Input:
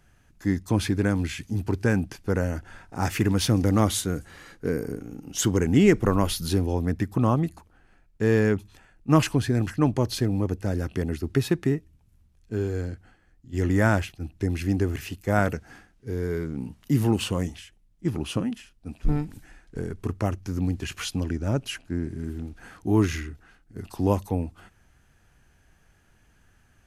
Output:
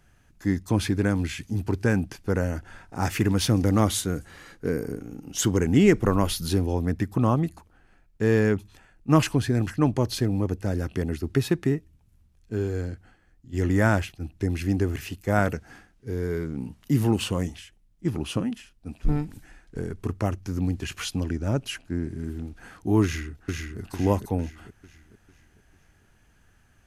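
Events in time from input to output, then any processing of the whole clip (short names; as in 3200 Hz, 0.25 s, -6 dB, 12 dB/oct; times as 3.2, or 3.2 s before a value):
23.03–23.8 echo throw 0.45 s, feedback 45%, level -3 dB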